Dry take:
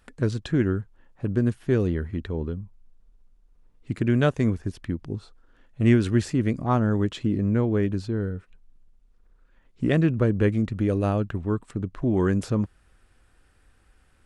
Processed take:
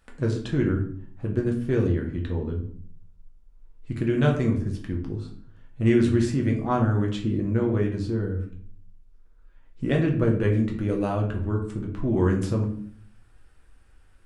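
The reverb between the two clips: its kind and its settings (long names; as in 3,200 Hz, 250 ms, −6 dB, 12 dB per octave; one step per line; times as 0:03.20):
rectangular room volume 63 cubic metres, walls mixed, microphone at 0.69 metres
level −3.5 dB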